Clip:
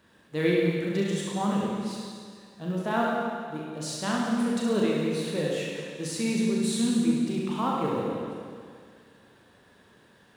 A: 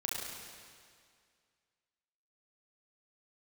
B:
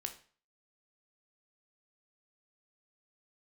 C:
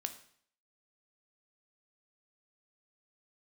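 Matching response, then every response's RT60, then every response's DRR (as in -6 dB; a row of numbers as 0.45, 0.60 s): A; 2.1, 0.45, 0.60 s; -4.0, 5.5, 7.5 dB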